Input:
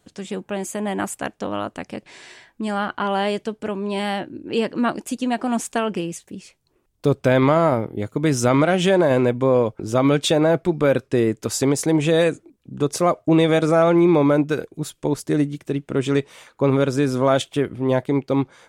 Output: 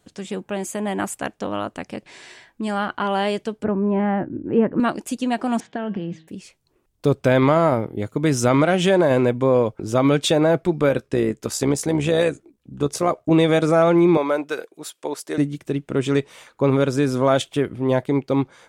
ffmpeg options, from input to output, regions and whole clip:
ffmpeg -i in.wav -filter_complex "[0:a]asettb=1/sr,asplit=3[link_01][link_02][link_03];[link_01]atrim=end=3.644[link_04];[link_02]atrim=start=3.64:end=4.8,asetpts=PTS-STARTPTS,afade=type=in:duration=0.004:curve=qsin,afade=type=out:start_time=1.156:duration=0.004:curve=qsin,lowpass=frequency=1800:width=0.5412,lowpass=frequency=1800:width=1.3066,lowshelf=frequency=290:gain=10[link_05];[link_03]atrim=start=4.796[link_06];[link_04][link_05]acrossfade=duration=0.004:curve1=hsin:curve2=qsin[link_07];[link_07][link_06]acrossfade=duration=0.004:curve1=qsin:curve2=hsin,asettb=1/sr,asplit=3[link_08][link_09][link_10];[link_08]atrim=end=5.604[link_11];[link_09]atrim=start=5.6:end=6.28,asetpts=PTS-STARTPTS,afade=type=in:duration=0.004:curve=qsin,afade=type=out:start_time=0.676:duration=0.004:curve=qsin,highpass=100,equalizer=frequency=130:width_type=q:width=4:gain=10,equalizer=frequency=200:width_type=q:width=4:gain=10,equalizer=frequency=750:width_type=q:width=4:gain=4,equalizer=frequency=1200:width_type=q:width=4:gain=-7,equalizer=frequency=1700:width_type=q:width=4:gain=5,equalizer=frequency=2600:width_type=q:width=4:gain=-9,lowpass=frequency=3700:width=0.5412,lowpass=frequency=3700:width=1.3066,bandreject=frequency=159.7:width_type=h:width=4,bandreject=frequency=319.4:width_type=h:width=4,bandreject=frequency=479.1:width_type=h:width=4,bandreject=frequency=638.8:width_type=h:width=4,bandreject=frequency=798.5:width_type=h:width=4,bandreject=frequency=958.2:width_type=h:width=4,bandreject=frequency=1117.9:width_type=h:width=4,bandreject=frequency=1277.6:width_type=h:width=4,bandreject=frequency=1437.3:width_type=h:width=4,bandreject=frequency=1597:width_type=h:width=4,bandreject=frequency=1756.7:width_type=h:width=4,bandreject=frequency=1916.4:width_type=h:width=4,bandreject=frequency=2076.1:width_type=h:width=4,bandreject=frequency=2235.8:width_type=h:width=4,bandreject=frequency=2395.5:width_type=h:width=4,bandreject=frequency=2555.2:width_type=h:width=4,bandreject=frequency=2714.9:width_type=h:width=4,bandreject=frequency=2874.6:width_type=h:width=4,bandreject=frequency=3034.3:width_type=h:width=4,bandreject=frequency=3194:width_type=h:width=4,bandreject=frequency=3353.7:width_type=h:width=4,bandreject=frequency=3513.4:width_type=h:width=4,bandreject=frequency=3673.1:width_type=h:width=4,bandreject=frequency=3832.8:width_type=h:width=4,bandreject=frequency=3992.5:width_type=h:width=4,bandreject=frequency=4152.2:width_type=h:width=4,acompressor=threshold=-23dB:ratio=5:attack=3.2:release=140:knee=1:detection=peak[link_12];[link_10]atrim=start=6.276[link_13];[link_11][link_12]acrossfade=duration=0.004:curve1=hsin:curve2=qsin[link_14];[link_14][link_13]acrossfade=duration=0.004:curve1=qsin:curve2=hsin,asettb=1/sr,asplit=3[link_15][link_16][link_17];[link_15]atrim=end=10.894[link_18];[link_16]atrim=start=10.89:end=13.31,asetpts=PTS-STARTPTS,afade=type=in:duration=0.004:curve=qsin,afade=type=out:start_time=2.416:duration=0.004:curve=qsin,tremolo=f=65:d=0.462,asplit=2[link_19][link_20];[link_20]adelay=14,volume=-14dB[link_21];[link_19][link_21]amix=inputs=2:normalize=0,atrim=end_sample=106722[link_22];[link_17]atrim=start=13.306[link_23];[link_18][link_22]acrossfade=duration=0.004:curve1=hsin:curve2=qsin[link_24];[link_24][link_23]acrossfade=duration=0.004:curve1=qsin:curve2=hsin,asettb=1/sr,asplit=3[link_25][link_26][link_27];[link_25]atrim=end=14.174[link_28];[link_26]atrim=start=14.17:end=15.38,asetpts=PTS-STARTPTS,afade=type=in:duration=0.004:curve=qsin,afade=type=out:start_time=1.206:duration=0.004:curve=qsin,highpass=490,bandreject=frequency=6600:width=29[link_29];[link_27]atrim=start=15.376[link_30];[link_28][link_29]acrossfade=duration=0.004:curve1=hsin:curve2=qsin[link_31];[link_31][link_30]acrossfade=duration=0.004:curve1=qsin:curve2=hsin" out.wav

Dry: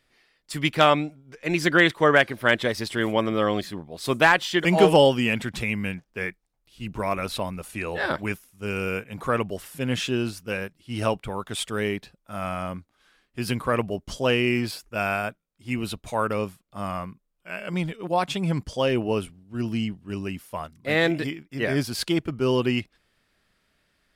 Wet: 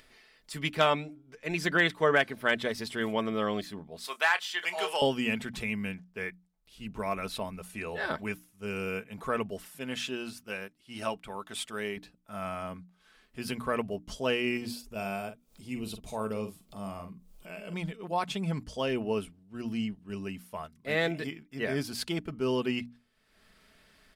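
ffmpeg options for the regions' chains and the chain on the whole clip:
ffmpeg -i in.wav -filter_complex "[0:a]asettb=1/sr,asplit=3[link_01][link_02][link_03];[link_01]atrim=end=4.044[link_04];[link_02]atrim=start=4.04:end=5.02,asetpts=PTS-STARTPTS,afade=type=in:duration=0.004:curve=qsin,afade=type=out:start_time=0.976:duration=0.004:curve=qsin,highpass=970,asplit=2[link_05][link_06];[link_06]adelay=28,volume=-13dB[link_07];[link_05][link_07]amix=inputs=2:normalize=0,atrim=end_sample=43218[link_08];[link_03]atrim=start=5.016[link_09];[link_04][link_08]acrossfade=duration=0.004:curve1=hsin:curve2=qsin[link_10];[link_10][link_09]acrossfade=duration=0.004:curve1=qsin:curve2=hsin,asettb=1/sr,asplit=3[link_11][link_12][link_13];[link_11]atrim=end=9.684[link_14];[link_12]atrim=start=9.68:end=11.97,asetpts=PTS-STARTPTS,afade=type=in:duration=0.004:curve=qsin,afade=type=out:start_time=2.286:duration=0.004:curve=qsin,lowshelf=frequency=220:gain=-10,bandreject=frequency=450:width=9.9[link_15];[link_13]atrim=start=11.966[link_16];[link_14][link_15]acrossfade=duration=0.004:curve1=hsin:curve2=qsin[link_17];[link_17][link_16]acrossfade=duration=0.004:curve1=qsin:curve2=hsin,asettb=1/sr,asplit=3[link_18][link_19][link_20];[link_18]atrim=end=14.574[link_21];[link_19]atrim=start=14.57:end=17.74,asetpts=PTS-STARTPTS,afade=type=in:duration=0.004:curve=qsin,afade=type=out:start_time=3.166:duration=0.004:curve=qsin,equalizer=frequency=1600:width_type=o:width=1.4:gain=-10,acompressor=mode=upward:threshold=-31dB:ratio=2.5:attack=3.2:release=140:knee=2.83:detection=peak,asplit=2[link_22][link_23];[link_23]adelay=46,volume=-9dB[link_24];[link_22][link_24]amix=inputs=2:normalize=0,atrim=end_sample=139797[link_25];[link_20]atrim=start=17.736[link_26];[link_21][link_25]acrossfade=duration=0.004:curve1=hsin:curve2=qsin[link_27];[link_27][link_26]acrossfade=duration=0.004:curve1=qsin:curve2=hsin,bandreject=frequency=60:width_type=h:width=6,bandreject=frequency=120:width_type=h:width=6,bandreject=frequency=180:width_type=h:width=6,bandreject=frequency=240:width_type=h:width=6,bandreject=frequency=300:width_type=h:width=6,aecho=1:1:4.6:0.36,acompressor=mode=upward:threshold=-41dB:ratio=2.5,volume=-7dB" out.wav

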